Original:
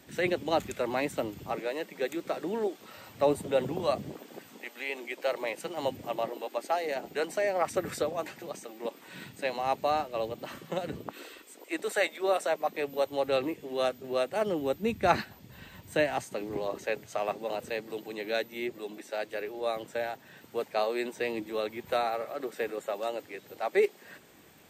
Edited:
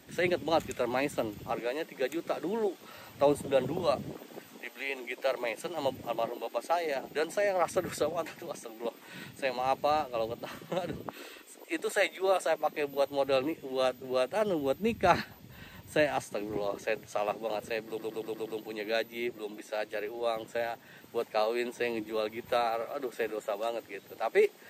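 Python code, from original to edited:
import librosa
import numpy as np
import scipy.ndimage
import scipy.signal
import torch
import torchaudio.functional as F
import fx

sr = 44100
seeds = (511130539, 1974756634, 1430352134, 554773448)

y = fx.edit(x, sr, fx.stutter(start_s=17.86, slice_s=0.12, count=6), tone=tone)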